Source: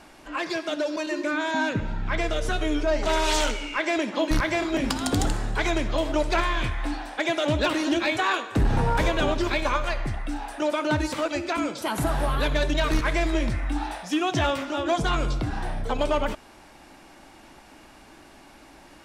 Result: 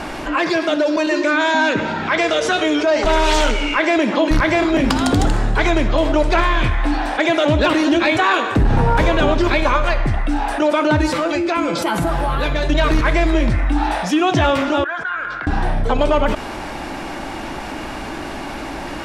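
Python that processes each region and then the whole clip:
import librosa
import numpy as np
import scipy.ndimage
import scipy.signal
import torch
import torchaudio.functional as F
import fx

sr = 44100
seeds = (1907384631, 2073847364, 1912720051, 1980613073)

y = fx.chain(x, sr, fx.bandpass_edges(low_hz=290.0, high_hz=7100.0),
    fx.high_shelf(hz=4000.0, db=9.0), at=(1.11, 3.04))
y = fx.chain(y, sr, fx.comb_fb(f0_hz=170.0, decay_s=0.16, harmonics='all', damping=0.0, mix_pct=80),
    fx.env_flatten(amount_pct=50), at=(11.1, 12.69))
y = fx.chain(y, sr, fx.bandpass_q(hz=1600.0, q=13.0),
    fx.env_flatten(amount_pct=50), at=(14.84, 15.47))
y = fx.high_shelf(y, sr, hz=4900.0, db=-10.0)
y = fx.env_flatten(y, sr, amount_pct=50)
y = y * librosa.db_to_amplitude(6.0)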